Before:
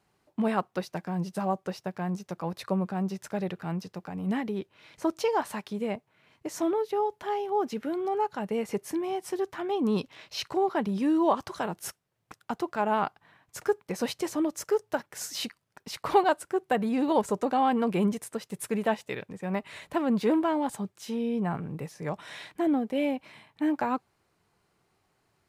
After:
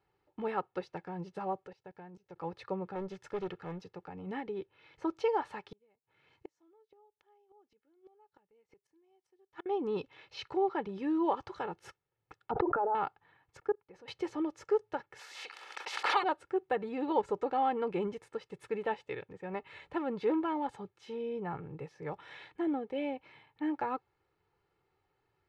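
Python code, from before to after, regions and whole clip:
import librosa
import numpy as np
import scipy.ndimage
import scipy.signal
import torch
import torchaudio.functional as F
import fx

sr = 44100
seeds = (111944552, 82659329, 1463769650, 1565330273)

y = fx.chain(x, sr, fx.notch(hz=1200.0, q=8.2),
    fx.level_steps(step_db=20), at=(1.67, 2.36))
y = fx.chain(y, sr, fx.high_shelf(hz=5000.0, db=7.5),
    fx.doppler_dist(depth_ms=0.64), at=(2.95, 3.84))
y = fx.chain(y, sr, fx.bass_treble(bass_db=1, treble_db=8),
    fx.gate_flip(shuts_db=-26.0, range_db=-34), at=(5.71, 9.66))
y = fx.chain(y, sr, fx.envelope_sharpen(power=2.0),
    fx.lowpass(hz=1600.0, slope=12),
    fx.env_flatten(amount_pct=100), at=(12.51, 12.95))
y = fx.chain(y, sr, fx.level_steps(step_db=23),
    fx.high_shelf(hz=3700.0, db=-9.5), at=(13.57, 14.08))
y = fx.spec_clip(y, sr, under_db=19, at=(15.18, 16.22), fade=0.02)
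y = fx.highpass(y, sr, hz=750.0, slope=12, at=(15.18, 16.22), fade=0.02)
y = fx.pre_swell(y, sr, db_per_s=33.0, at=(15.18, 16.22), fade=0.02)
y = scipy.signal.sosfilt(scipy.signal.butter(2, 3100.0, 'lowpass', fs=sr, output='sos'), y)
y = y + 0.62 * np.pad(y, (int(2.3 * sr / 1000.0), 0))[:len(y)]
y = y * librosa.db_to_amplitude(-7.0)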